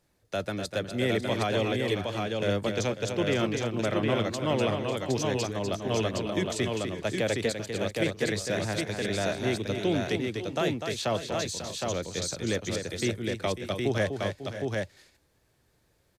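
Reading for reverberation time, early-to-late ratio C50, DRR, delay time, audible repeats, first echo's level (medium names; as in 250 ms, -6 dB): no reverb, no reverb, no reverb, 248 ms, 4, -7.0 dB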